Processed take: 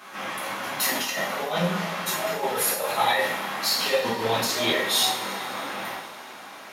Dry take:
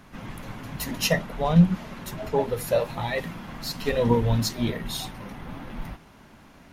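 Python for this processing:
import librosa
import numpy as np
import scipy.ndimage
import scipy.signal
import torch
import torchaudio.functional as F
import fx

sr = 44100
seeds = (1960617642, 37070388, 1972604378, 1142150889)

y = scipy.signal.sosfilt(scipy.signal.butter(2, 560.0, 'highpass', fs=sr, output='sos'), x)
y = fx.over_compress(y, sr, threshold_db=-32.0, ratio=-0.5)
y = fx.rev_double_slope(y, sr, seeds[0], early_s=0.52, late_s=4.2, knee_db=-19, drr_db=-6.5)
y = y * 10.0 ** (2.5 / 20.0)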